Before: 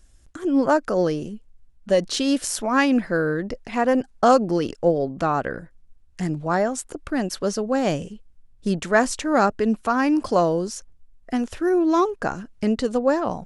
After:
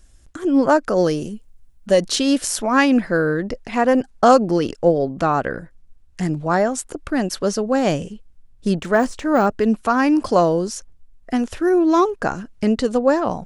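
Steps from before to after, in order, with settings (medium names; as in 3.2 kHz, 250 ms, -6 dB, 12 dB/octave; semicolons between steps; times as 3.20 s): 0.96–2.15 s: treble shelf 6.3 kHz -> 10 kHz +11 dB; 8.81–9.76 s: de-esser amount 90%; trim +3.5 dB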